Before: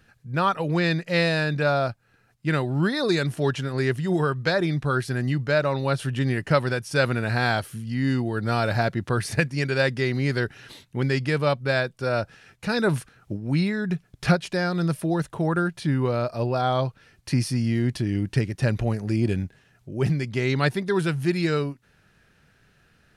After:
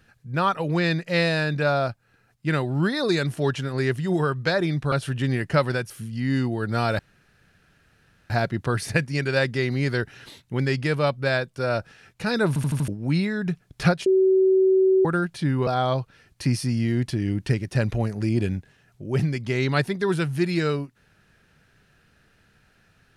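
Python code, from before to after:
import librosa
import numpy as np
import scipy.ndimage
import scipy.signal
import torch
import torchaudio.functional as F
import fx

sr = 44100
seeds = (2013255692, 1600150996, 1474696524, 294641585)

y = fx.edit(x, sr, fx.cut(start_s=4.92, length_s=0.97),
    fx.cut(start_s=6.87, length_s=0.77),
    fx.insert_room_tone(at_s=8.73, length_s=1.31),
    fx.stutter_over(start_s=12.91, slice_s=0.08, count=5),
    fx.bleep(start_s=14.49, length_s=0.99, hz=379.0, db=-14.5),
    fx.cut(start_s=16.1, length_s=0.44), tone=tone)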